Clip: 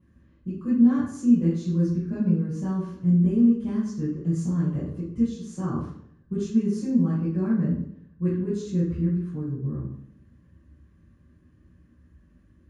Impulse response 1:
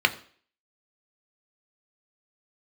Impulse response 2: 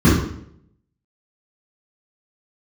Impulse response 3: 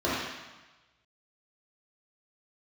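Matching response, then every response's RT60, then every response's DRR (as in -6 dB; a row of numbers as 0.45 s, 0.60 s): 2; 0.50 s, 0.65 s, 1.1 s; 7.0 dB, -11.5 dB, -9.0 dB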